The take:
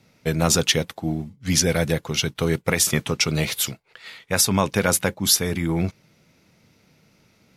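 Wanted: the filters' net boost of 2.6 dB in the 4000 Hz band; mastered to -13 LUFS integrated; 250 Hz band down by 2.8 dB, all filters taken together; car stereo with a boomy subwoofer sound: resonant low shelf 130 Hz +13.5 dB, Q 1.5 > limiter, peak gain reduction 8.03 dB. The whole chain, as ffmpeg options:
-af "lowshelf=f=130:t=q:w=1.5:g=13.5,equalizer=f=250:t=o:g=-3.5,equalizer=f=4k:t=o:g=3.5,volume=8dB,alimiter=limit=-1.5dB:level=0:latency=1"

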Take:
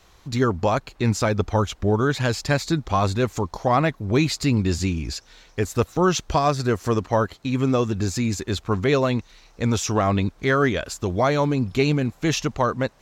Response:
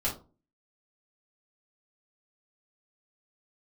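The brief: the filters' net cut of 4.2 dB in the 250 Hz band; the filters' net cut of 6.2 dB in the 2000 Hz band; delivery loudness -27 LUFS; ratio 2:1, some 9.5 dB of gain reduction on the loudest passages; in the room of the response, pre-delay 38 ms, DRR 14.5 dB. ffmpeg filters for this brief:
-filter_complex "[0:a]equalizer=f=250:t=o:g=-5.5,equalizer=f=2k:t=o:g=-8.5,acompressor=threshold=-35dB:ratio=2,asplit=2[a][b];[1:a]atrim=start_sample=2205,adelay=38[c];[b][c]afir=irnorm=-1:irlink=0,volume=-21dB[d];[a][d]amix=inputs=2:normalize=0,volume=6dB"

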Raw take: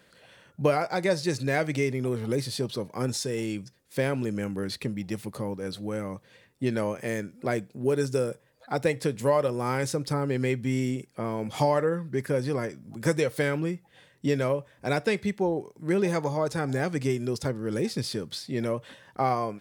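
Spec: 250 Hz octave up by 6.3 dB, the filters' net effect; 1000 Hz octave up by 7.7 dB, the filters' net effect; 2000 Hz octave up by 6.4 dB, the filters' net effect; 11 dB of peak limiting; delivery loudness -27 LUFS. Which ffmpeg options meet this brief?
-af "equalizer=f=250:t=o:g=7.5,equalizer=f=1k:t=o:g=8.5,equalizer=f=2k:t=o:g=5,alimiter=limit=-15dB:level=0:latency=1"

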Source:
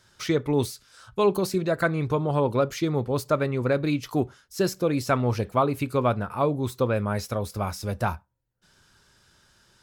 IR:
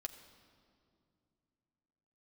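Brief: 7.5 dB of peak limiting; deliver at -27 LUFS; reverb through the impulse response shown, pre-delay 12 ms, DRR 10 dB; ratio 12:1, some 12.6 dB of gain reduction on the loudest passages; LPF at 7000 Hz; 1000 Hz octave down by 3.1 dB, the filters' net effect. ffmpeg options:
-filter_complex "[0:a]lowpass=7k,equalizer=f=1k:t=o:g=-4,acompressor=threshold=-31dB:ratio=12,alimiter=level_in=4dB:limit=-24dB:level=0:latency=1,volume=-4dB,asplit=2[a][b];[1:a]atrim=start_sample=2205,adelay=12[c];[b][c]afir=irnorm=-1:irlink=0,volume=-7dB[d];[a][d]amix=inputs=2:normalize=0,volume=11.5dB"

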